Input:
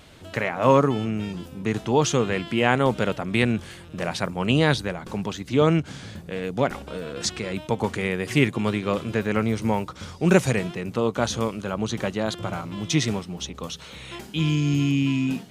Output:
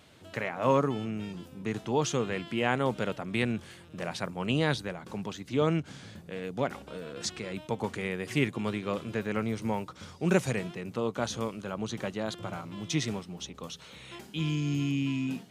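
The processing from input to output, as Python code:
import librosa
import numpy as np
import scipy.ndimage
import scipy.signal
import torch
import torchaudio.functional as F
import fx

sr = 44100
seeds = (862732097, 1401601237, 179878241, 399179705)

y = scipy.signal.sosfilt(scipy.signal.butter(2, 87.0, 'highpass', fs=sr, output='sos'), x)
y = y * librosa.db_to_amplitude(-7.5)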